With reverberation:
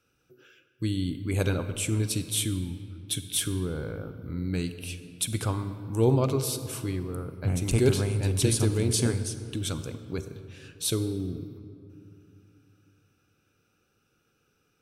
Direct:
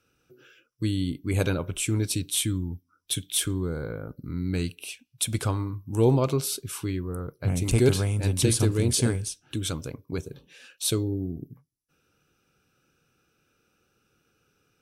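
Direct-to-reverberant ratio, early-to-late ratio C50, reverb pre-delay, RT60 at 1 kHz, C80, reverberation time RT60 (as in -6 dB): 10.5 dB, 11.0 dB, 37 ms, 2.4 s, 12.0 dB, 2.6 s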